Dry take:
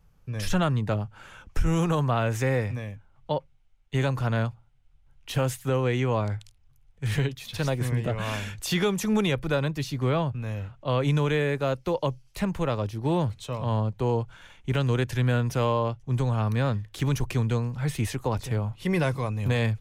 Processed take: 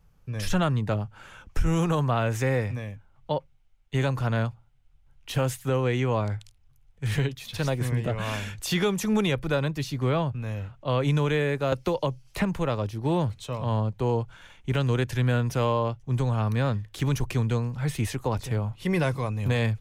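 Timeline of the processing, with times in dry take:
0:11.72–0:12.56: multiband upward and downward compressor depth 100%

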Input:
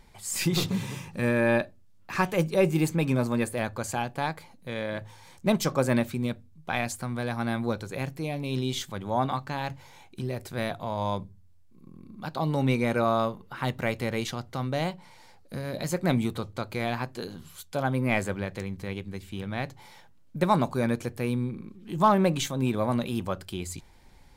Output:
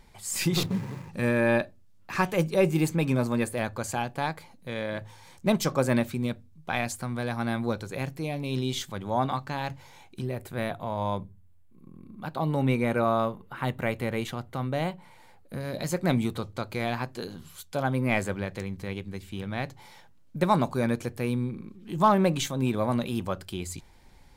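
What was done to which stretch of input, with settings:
0:00.63–0:01.10: running median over 15 samples
0:10.25–0:15.61: parametric band 5,300 Hz −9.5 dB 0.87 octaves

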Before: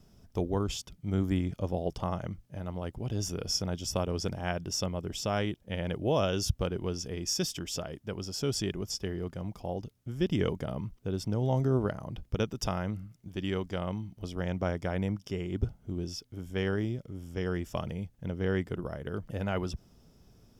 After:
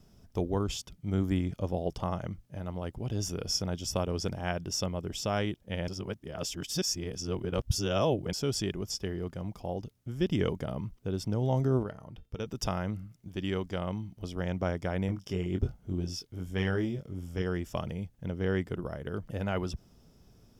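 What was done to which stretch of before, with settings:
0:05.88–0:08.33: reverse
0:11.83–0:12.46: tuned comb filter 450 Hz, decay 0.33 s
0:15.06–0:17.42: double-tracking delay 22 ms −5.5 dB

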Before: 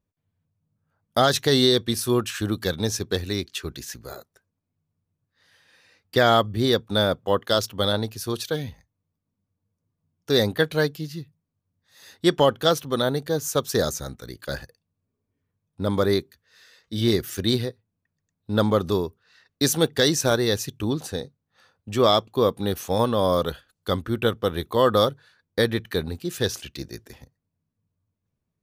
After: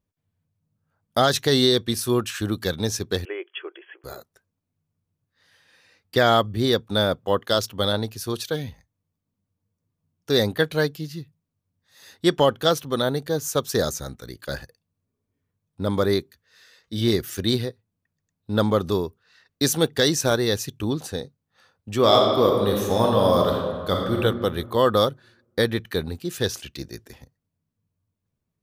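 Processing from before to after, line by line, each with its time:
0:03.25–0:04.04: linear-phase brick-wall band-pass 320–3,400 Hz
0:21.97–0:24.15: thrown reverb, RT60 1.8 s, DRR 0 dB

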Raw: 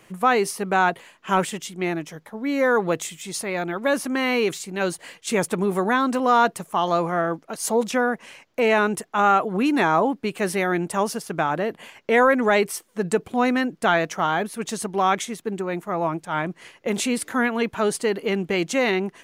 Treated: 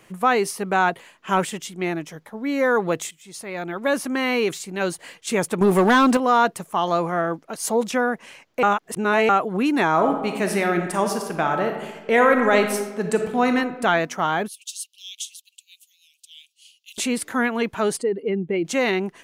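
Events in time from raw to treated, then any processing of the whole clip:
0:03.11–0:03.89: fade in, from −17.5 dB
0:05.61–0:06.17: leveller curve on the samples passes 2
0:08.63–0:09.29: reverse
0:09.91–0:13.56: thrown reverb, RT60 1.2 s, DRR 4.5 dB
0:14.48–0:16.98: Butterworth high-pass 2,800 Hz 72 dB per octave
0:17.97–0:18.65: expanding power law on the bin magnitudes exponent 1.7

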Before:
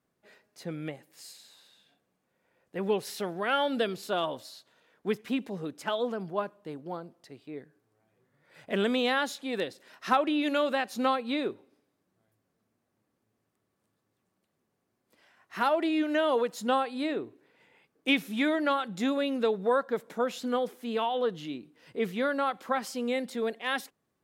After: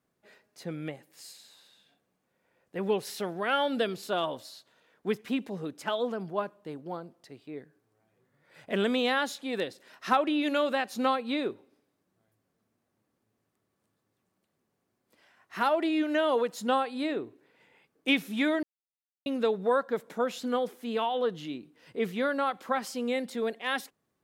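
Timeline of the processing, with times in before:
0:18.63–0:19.26: silence

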